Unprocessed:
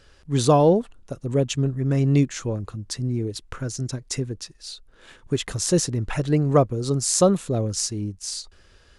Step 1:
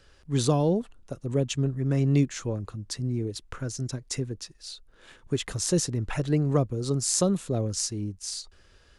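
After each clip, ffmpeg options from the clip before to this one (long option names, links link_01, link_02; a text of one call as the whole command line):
ffmpeg -i in.wav -filter_complex "[0:a]acrossover=split=330|3000[link_01][link_02][link_03];[link_02]acompressor=threshold=-22dB:ratio=6[link_04];[link_01][link_04][link_03]amix=inputs=3:normalize=0,volume=-3.5dB" out.wav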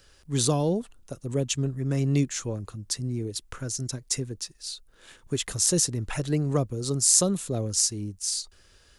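ffmpeg -i in.wav -af "crystalizer=i=2:c=0,volume=-1.5dB" out.wav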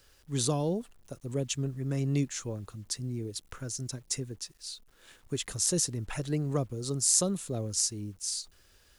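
ffmpeg -i in.wav -af "acrusher=bits=9:mix=0:aa=0.000001,volume=-5dB" out.wav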